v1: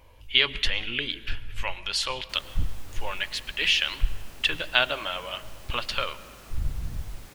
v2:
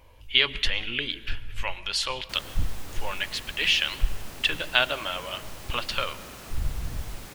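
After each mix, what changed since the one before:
background +6.0 dB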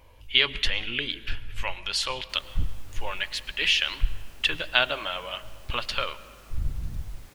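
background -10.5 dB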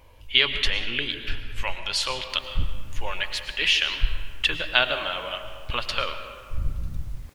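speech: send +10.5 dB; background -3.5 dB

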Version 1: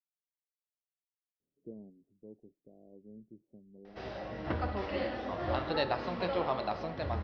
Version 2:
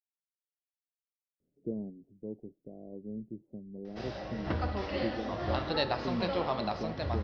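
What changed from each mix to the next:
speech +9.5 dB; master: add tone controls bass +3 dB, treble +9 dB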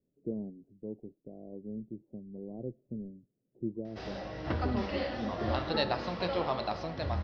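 speech: entry -1.40 s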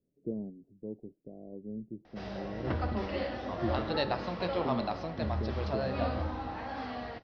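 background: entry -1.80 s; master: add high shelf 4300 Hz -6.5 dB

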